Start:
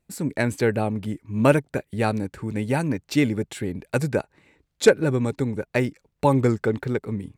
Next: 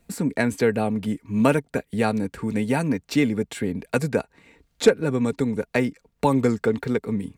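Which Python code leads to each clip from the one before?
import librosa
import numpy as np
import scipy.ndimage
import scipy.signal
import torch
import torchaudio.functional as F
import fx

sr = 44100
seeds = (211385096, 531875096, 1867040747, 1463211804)

y = x + 0.39 * np.pad(x, (int(4.3 * sr / 1000.0), 0))[:len(x)]
y = fx.band_squash(y, sr, depth_pct=40)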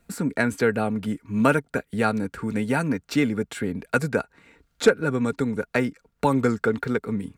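y = fx.peak_eq(x, sr, hz=1400.0, db=9.5, octaves=0.37)
y = F.gain(torch.from_numpy(y), -1.5).numpy()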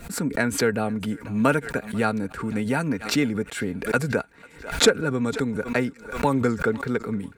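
y = fx.echo_thinned(x, sr, ms=493, feedback_pct=48, hz=720.0, wet_db=-23.0)
y = fx.pre_swell(y, sr, db_per_s=110.0)
y = F.gain(torch.from_numpy(y), -1.0).numpy()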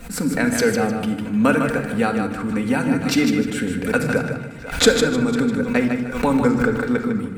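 y = fx.echo_feedback(x, sr, ms=153, feedback_pct=27, wet_db=-7.0)
y = fx.room_shoebox(y, sr, seeds[0], volume_m3=3400.0, walls='furnished', distance_m=2.0)
y = F.gain(torch.from_numpy(y), 1.5).numpy()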